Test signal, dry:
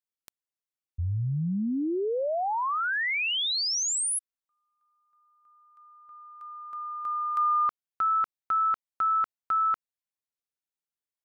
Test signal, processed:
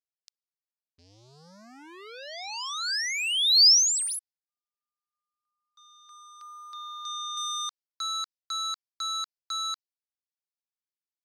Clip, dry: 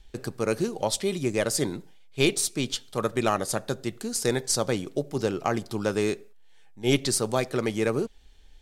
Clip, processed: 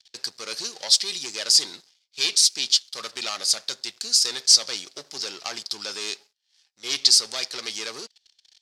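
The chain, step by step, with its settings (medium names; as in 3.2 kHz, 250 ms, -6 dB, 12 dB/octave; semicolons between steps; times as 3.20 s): gate with hold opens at -51 dBFS, range -6 dB; waveshaping leveller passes 3; band-pass filter 4.9 kHz, Q 3.4; trim +8.5 dB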